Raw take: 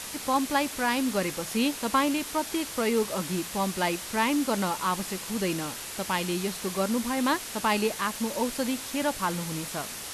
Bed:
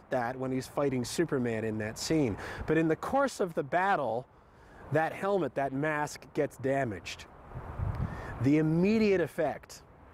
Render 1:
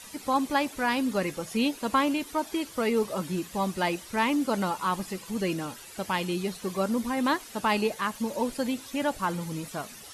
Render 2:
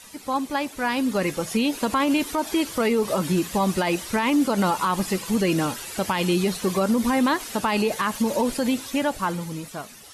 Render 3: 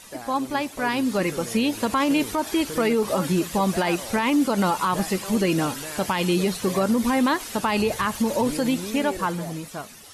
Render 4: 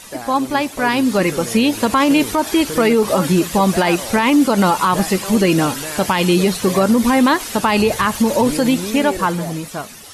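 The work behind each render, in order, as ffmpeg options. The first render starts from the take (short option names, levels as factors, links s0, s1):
-af "afftdn=nr=12:nf=-38"
-af "dynaudnorm=f=120:g=21:m=3.76,alimiter=limit=0.211:level=0:latency=1:release=72"
-filter_complex "[1:a]volume=0.422[s0];[0:a][s0]amix=inputs=2:normalize=0"
-af "volume=2.37"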